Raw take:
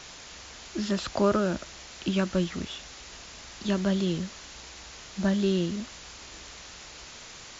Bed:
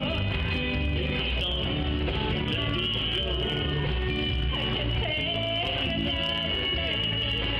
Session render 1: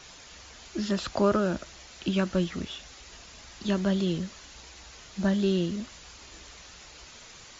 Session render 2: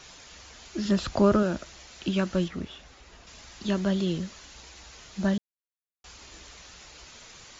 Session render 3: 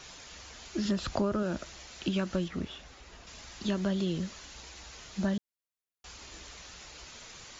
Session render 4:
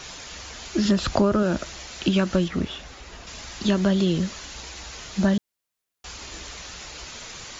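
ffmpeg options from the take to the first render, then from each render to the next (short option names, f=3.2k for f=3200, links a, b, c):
-af "afftdn=nr=6:nf=-46"
-filter_complex "[0:a]asettb=1/sr,asplit=3[a][b][c];[a]atrim=end=0.854[d];[b]atrim=start=0.85:end=1.43,asetpts=PTS-STARTPTS,afade=t=in:d=0.004:c=qsin,afade=t=out:st=0.576:d=0.004:c=qsin,lowshelf=f=250:g=8[e];[c]atrim=start=1.426[f];[d][e]acrossfade=d=0.004:c1=hsin:c2=qsin[g];[g][f]acrossfade=d=0.004:c1=qsin:c2=hsin,asettb=1/sr,asplit=3[h][i][j];[h]atrim=end=2.484[k];[i]atrim=start=2.48:end=3.27,asetpts=PTS-STARTPTS,afade=t=in:d=0.004:c=qsin,afade=t=out:st=0.786:d=0.004:c=qsin,highshelf=f=3k:g=-11[l];[j]atrim=start=3.266[m];[k][l]acrossfade=d=0.004:c1=hsin:c2=qsin[n];[n][m]acrossfade=d=0.004:c1=qsin:c2=hsin,asplit=3[o][p][q];[o]atrim=end=5.38,asetpts=PTS-STARTPTS,afade=t=out:st=5.376:d=0.004:c=hsin[r];[p]atrim=start=5.38:end=6.04,asetpts=PTS-STARTPTS,volume=0[s];[q]atrim=start=6.04,asetpts=PTS-STARTPTS,afade=t=in:d=0.004:c=hsin[t];[r][s][t]concat=n=3:v=0:a=1"
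-af "acompressor=threshold=-27dB:ratio=4"
-af "volume=9.5dB"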